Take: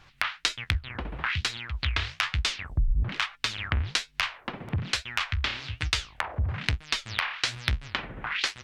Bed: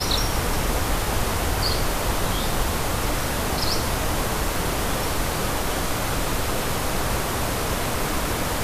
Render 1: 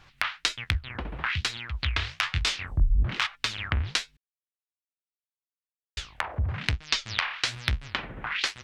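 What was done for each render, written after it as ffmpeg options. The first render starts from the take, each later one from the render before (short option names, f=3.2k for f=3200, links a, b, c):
-filter_complex "[0:a]asettb=1/sr,asplit=3[a][b][c];[a]atrim=end=2.324[d];[b]atrim=start=2.32:end=3.27,asetpts=PTS-STARTPTS,afade=t=in:d=0.004:c=qsin,afade=t=out:st=0.946:d=0.004:c=qsin,asplit=2[e][f];[f]adelay=23,volume=-3dB[g];[e][g]amix=inputs=2:normalize=0,atrim=end_sample=41895[h];[c]atrim=start=3.266[i];[d][h]acrossfade=d=0.004:c1=hsin:c2=qsin[j];[j][i]acrossfade=d=0.004:c1=qsin:c2=hsin,asettb=1/sr,asplit=3[k][l][m];[k]atrim=end=6.744[n];[l]atrim=start=6.74:end=7.21,asetpts=PTS-STARTPTS,afade=t=in:d=0.004:c=qsin,afade=t=out:st=0.466:d=0.004:c=qsin,lowpass=f=5.9k:t=q:w=1.6[o];[m]atrim=start=7.206[p];[n][o]acrossfade=d=0.004:c1=hsin:c2=qsin[q];[q][p]acrossfade=d=0.004:c1=qsin:c2=hsin,asplit=3[r][s][t];[r]atrim=end=4.17,asetpts=PTS-STARTPTS,afade=t=out:st=4.166:d=0.004:c=hsin[u];[s]atrim=start=4.17:end=5.97,asetpts=PTS-STARTPTS,volume=0[v];[t]atrim=start=5.97,asetpts=PTS-STARTPTS,afade=t=in:d=0.004:c=hsin[w];[u][v][w]concat=n=3:v=0:a=1"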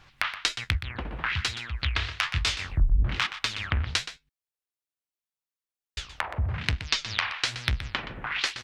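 -filter_complex "[0:a]asplit=2[a][b];[b]adelay=122.4,volume=-11dB,highshelf=f=4k:g=-2.76[c];[a][c]amix=inputs=2:normalize=0"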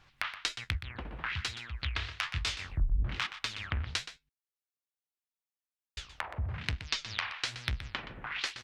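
-af "volume=-7dB"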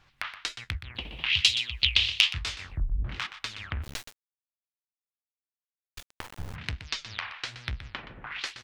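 -filter_complex "[0:a]asplit=3[a][b][c];[a]afade=t=out:st=0.94:d=0.02[d];[b]highshelf=f=2.1k:t=q:w=3:g=11.5,afade=t=in:st=0.94:d=0.02,afade=t=out:st=2.32:d=0.02[e];[c]afade=t=in:st=2.32:d=0.02[f];[d][e][f]amix=inputs=3:normalize=0,asplit=3[g][h][i];[g]afade=t=out:st=3.82:d=0.02[j];[h]acrusher=bits=4:dc=4:mix=0:aa=0.000001,afade=t=in:st=3.82:d=0.02,afade=t=out:st=6.54:d=0.02[k];[i]afade=t=in:st=6.54:d=0.02[l];[j][k][l]amix=inputs=3:normalize=0,asettb=1/sr,asplit=3[m][n][o];[m]atrim=end=7.084[p];[n]atrim=start=7.08:end=8.31,asetpts=PTS-STARTPTS,afade=t=in:d=0.004:c=qsin,afade=t=out:st=1.226:d=0.004:c=qsin,highshelf=f=8.4k:g=-12[q];[o]atrim=start=8.306[r];[p][q]acrossfade=d=0.004:c1=hsin:c2=qsin[s];[s][r]acrossfade=d=0.004:c1=qsin:c2=hsin"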